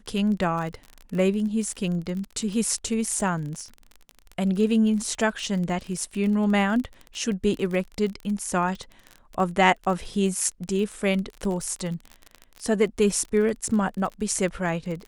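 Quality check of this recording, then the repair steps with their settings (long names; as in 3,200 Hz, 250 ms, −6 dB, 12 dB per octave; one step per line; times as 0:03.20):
surface crackle 31 per second −30 dBFS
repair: click removal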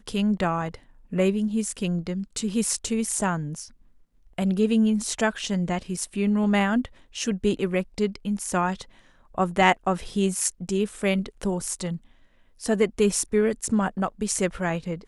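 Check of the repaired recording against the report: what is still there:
none of them is left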